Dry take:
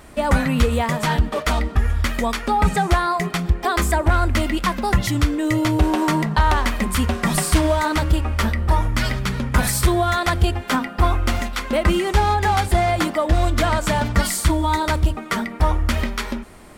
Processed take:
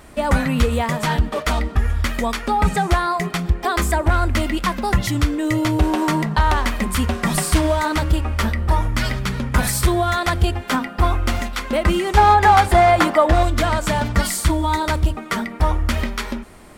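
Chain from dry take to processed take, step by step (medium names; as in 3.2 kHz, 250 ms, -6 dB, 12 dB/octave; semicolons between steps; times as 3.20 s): 12.17–13.43 s: peaking EQ 1 kHz +8 dB 2.6 oct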